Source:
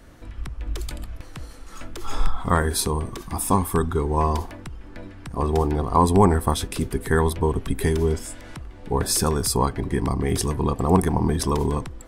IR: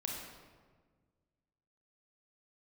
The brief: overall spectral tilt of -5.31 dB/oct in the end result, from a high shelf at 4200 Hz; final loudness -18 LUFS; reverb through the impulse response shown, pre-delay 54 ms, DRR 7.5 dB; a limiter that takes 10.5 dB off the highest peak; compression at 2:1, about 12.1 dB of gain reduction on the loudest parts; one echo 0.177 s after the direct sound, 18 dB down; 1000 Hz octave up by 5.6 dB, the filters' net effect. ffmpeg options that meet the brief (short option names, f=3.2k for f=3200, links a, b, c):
-filter_complex "[0:a]equalizer=f=1k:t=o:g=6.5,highshelf=f=4.2k:g=-3,acompressor=threshold=-31dB:ratio=2,alimiter=limit=-22dB:level=0:latency=1,aecho=1:1:177:0.126,asplit=2[a][b];[1:a]atrim=start_sample=2205,adelay=54[c];[b][c]afir=irnorm=-1:irlink=0,volume=-8.5dB[d];[a][d]amix=inputs=2:normalize=0,volume=14.5dB"